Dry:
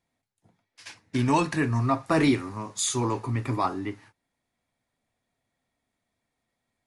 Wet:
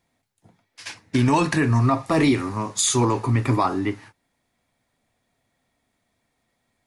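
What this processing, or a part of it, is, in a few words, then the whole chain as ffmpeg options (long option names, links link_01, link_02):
clipper into limiter: -filter_complex "[0:a]asoftclip=type=hard:threshold=-12.5dB,alimiter=limit=-18dB:level=0:latency=1:release=73,asettb=1/sr,asplit=3[link_01][link_02][link_03];[link_01]atrim=end=1.944[link_04];[link_02]atrim=start=1.94:end=2.34,asetpts=PTS-STARTPTS,afade=type=in:duration=0.004:curve=qsin,afade=type=out:start_time=0.396:duration=0.004:curve=qsin,bandreject=frequency=1500:width=5.4[link_05];[link_03]atrim=start=2.336[link_06];[link_04][link_05]acrossfade=duration=0.004:curve1=hsin:curve2=qsin[link_07];[link_07][link_06]acrossfade=duration=0.004:curve1=qsin:curve2=hsin,volume=8dB"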